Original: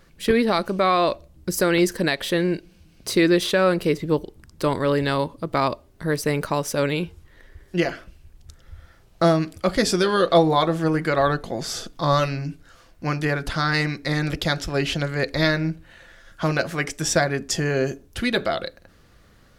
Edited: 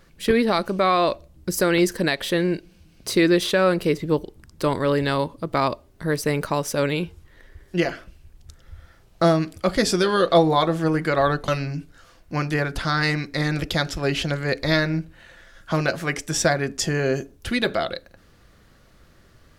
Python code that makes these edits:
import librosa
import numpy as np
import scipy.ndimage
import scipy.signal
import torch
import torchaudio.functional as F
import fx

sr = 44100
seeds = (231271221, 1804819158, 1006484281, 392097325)

y = fx.edit(x, sr, fx.cut(start_s=11.48, length_s=0.71), tone=tone)